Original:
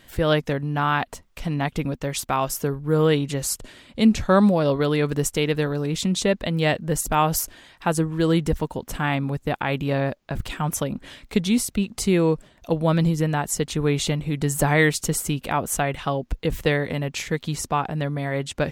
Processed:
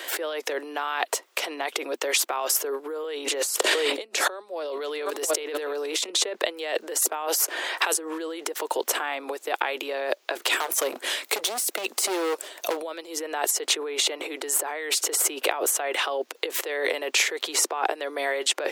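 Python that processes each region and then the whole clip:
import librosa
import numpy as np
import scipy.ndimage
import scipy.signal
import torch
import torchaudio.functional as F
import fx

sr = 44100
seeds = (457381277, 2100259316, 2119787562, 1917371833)

y = fx.chain(x, sr, fx.ellip_highpass(hz=200.0, order=4, stop_db=40),
    fx.echo_single(ms=707, db=-22.0),
    fx.env_flatten(amount_pct=50), at=(3.04, 6.1))
y = fx.chain(y, sr, fx.highpass(hz=230.0, slope=12),
    fx.band_squash(depth_pct=70), at=(7.27, 7.94))
y = fx.chain(y, sr, fx.overload_stage(gain_db=24.5),
    fx.high_shelf(hz=7200.0, db=11.5), at=(10.53, 12.77))
y = fx.over_compress(y, sr, threshold_db=-30.0, ratio=-1.0)
y = scipy.signal.sosfilt(scipy.signal.butter(8, 350.0, 'highpass', fs=sr, output='sos'), y)
y = fx.band_squash(y, sr, depth_pct=40)
y = y * 10.0 ** (4.5 / 20.0)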